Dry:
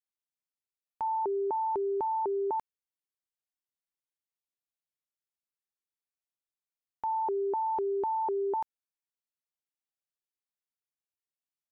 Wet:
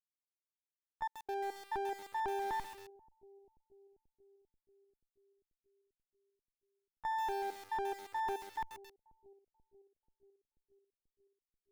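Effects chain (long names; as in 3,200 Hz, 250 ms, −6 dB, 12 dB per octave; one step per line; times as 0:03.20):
lower of the sound and its delayed copy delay 0.93 ms
noise gate with hold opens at −27 dBFS
brickwall limiter −34.5 dBFS, peak gain reduction 10.5 dB
gate pattern "xxxxx.x.x." 70 BPM −60 dB
bucket-brigade delay 485 ms, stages 2,048, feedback 67%, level −21 dB
feedback echo at a low word length 135 ms, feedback 55%, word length 8 bits, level −10 dB
level +4.5 dB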